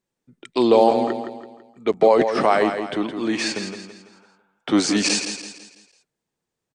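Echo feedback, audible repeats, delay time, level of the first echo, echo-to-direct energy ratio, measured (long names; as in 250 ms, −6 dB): 42%, 4, 166 ms, −8.0 dB, −7.0 dB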